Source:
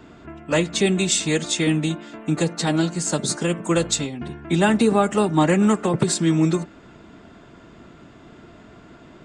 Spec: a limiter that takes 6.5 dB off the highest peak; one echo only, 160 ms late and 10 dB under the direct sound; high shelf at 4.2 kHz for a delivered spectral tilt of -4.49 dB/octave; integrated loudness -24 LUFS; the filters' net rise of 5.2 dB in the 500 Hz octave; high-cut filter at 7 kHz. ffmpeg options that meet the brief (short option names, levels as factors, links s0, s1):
-af "lowpass=7000,equalizer=f=500:t=o:g=6.5,highshelf=f=4200:g=7,alimiter=limit=0.355:level=0:latency=1,aecho=1:1:160:0.316,volume=0.596"